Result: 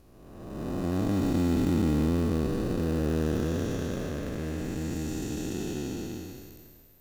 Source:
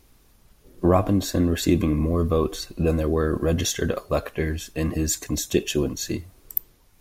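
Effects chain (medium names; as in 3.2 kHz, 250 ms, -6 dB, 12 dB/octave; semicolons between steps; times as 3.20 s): spectral blur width 809 ms; dynamic bell 230 Hz, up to +5 dB, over -41 dBFS, Q 1.4; in parallel at -9 dB: sample-and-hold 40×; on the sum: trim -5.5 dB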